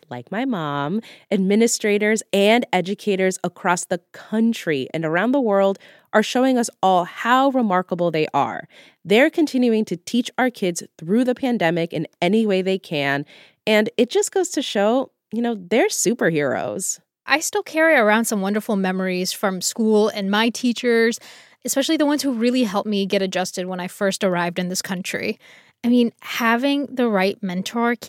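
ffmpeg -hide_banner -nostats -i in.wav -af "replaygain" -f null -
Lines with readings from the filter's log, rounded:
track_gain = +0.2 dB
track_peak = 0.578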